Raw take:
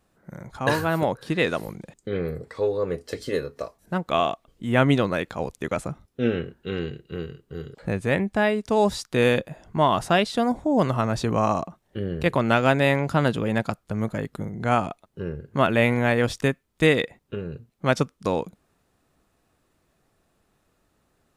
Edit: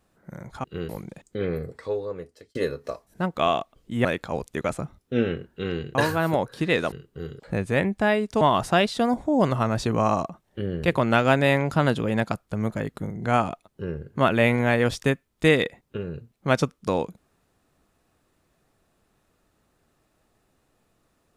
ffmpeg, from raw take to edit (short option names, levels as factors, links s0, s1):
-filter_complex "[0:a]asplit=8[s0][s1][s2][s3][s4][s5][s6][s7];[s0]atrim=end=0.642[s8];[s1]atrim=start=7.018:end=7.272[s9];[s2]atrim=start=1.608:end=3.27,asetpts=PTS-STARTPTS,afade=t=out:st=0.682:d=0.98[s10];[s3]atrim=start=3.27:end=4.772,asetpts=PTS-STARTPTS,afade=t=in:d=0.004:c=hsin[s11];[s4]atrim=start=5.118:end=7.022[s12];[s5]atrim=start=0.638:end=1.612[s13];[s6]atrim=start=7.268:end=8.762[s14];[s7]atrim=start=9.788[s15];[s8][s9]acrossfade=d=0.004:c1=hsin:c2=hsin[s16];[s10][s11]concat=n=2:v=0:a=1[s17];[s16][s17]acrossfade=d=0.004:c1=hsin:c2=hsin[s18];[s18][s12]acrossfade=d=0.004:c1=hsin:c2=hsin[s19];[s19][s13]acrossfade=d=0.004:c1=hsin:c2=hsin[s20];[s20][s14]acrossfade=d=0.004:c1=hsin:c2=hsin[s21];[s21][s15]acrossfade=d=0.004:c1=hsin:c2=hsin"